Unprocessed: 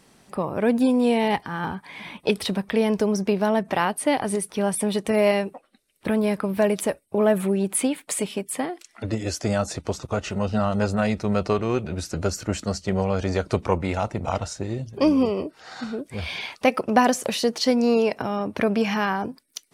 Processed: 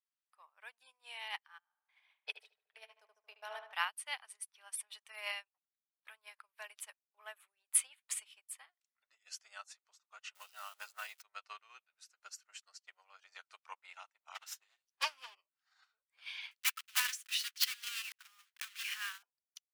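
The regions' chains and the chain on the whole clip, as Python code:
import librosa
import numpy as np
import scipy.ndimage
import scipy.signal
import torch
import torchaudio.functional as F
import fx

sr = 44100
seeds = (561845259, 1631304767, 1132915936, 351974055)

y = fx.chain(x, sr, fx.level_steps(step_db=21),
    fx.band_shelf(hz=540.0, db=8.5, octaves=1.2),
    fx.echo_filtered(ms=75, feedback_pct=76, hz=2900.0, wet_db=-3), at=(1.58, 3.73))
y = fx.chain(y, sr, fx.crossing_spikes(level_db=-25.0),
    fx.band_squash(depth_pct=100), at=(10.35, 11.22))
y = fx.chain(y, sr, fx.lower_of_two(delay_ms=7.7),
    fx.high_shelf(hz=2200.0, db=7.5), at=(14.34, 15.35))
y = fx.chain(y, sr, fx.block_float(bits=3),
    fx.highpass(hz=1400.0, slope=24),
    fx.overflow_wrap(gain_db=16.0), at=(16.51, 19.23))
y = scipy.signal.sosfilt(scipy.signal.butter(4, 1100.0, 'highpass', fs=sr, output='sos'), y)
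y = fx.dynamic_eq(y, sr, hz=2900.0, q=2.4, threshold_db=-46.0, ratio=4.0, max_db=5)
y = fx.upward_expand(y, sr, threshold_db=-47.0, expansion=2.5)
y = y * librosa.db_to_amplitude(-3.0)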